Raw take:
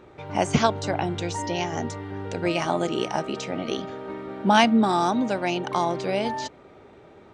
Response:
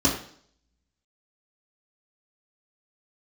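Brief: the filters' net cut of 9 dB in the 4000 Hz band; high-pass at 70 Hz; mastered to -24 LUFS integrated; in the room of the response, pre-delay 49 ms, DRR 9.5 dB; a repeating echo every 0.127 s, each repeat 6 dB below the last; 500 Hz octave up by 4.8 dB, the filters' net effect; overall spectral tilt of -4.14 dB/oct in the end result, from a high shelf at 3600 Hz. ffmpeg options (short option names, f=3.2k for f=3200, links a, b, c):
-filter_complex "[0:a]highpass=70,equalizer=f=500:t=o:g=7,highshelf=f=3.6k:g=-8.5,equalizer=f=4k:t=o:g=-8,aecho=1:1:127|254|381|508|635|762:0.501|0.251|0.125|0.0626|0.0313|0.0157,asplit=2[a][b];[1:a]atrim=start_sample=2205,adelay=49[c];[b][c]afir=irnorm=-1:irlink=0,volume=-23.5dB[d];[a][d]amix=inputs=2:normalize=0,volume=-4dB"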